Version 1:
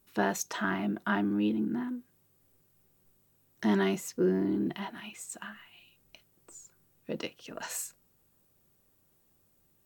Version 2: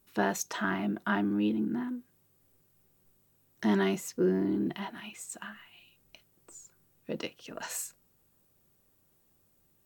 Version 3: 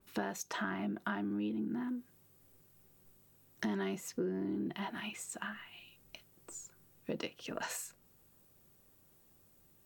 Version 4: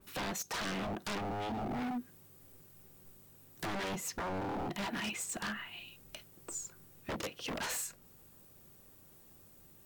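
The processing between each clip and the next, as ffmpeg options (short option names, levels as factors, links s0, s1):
-af anull
-af "acompressor=threshold=0.0126:ratio=5,adynamicequalizer=threshold=0.00126:dfrequency=3900:dqfactor=0.7:tfrequency=3900:tqfactor=0.7:attack=5:release=100:ratio=0.375:range=3:mode=cutabove:tftype=highshelf,volume=1.41"
-af "aeval=exprs='0.0119*(abs(mod(val(0)/0.0119+3,4)-2)-1)':c=same,volume=2.11"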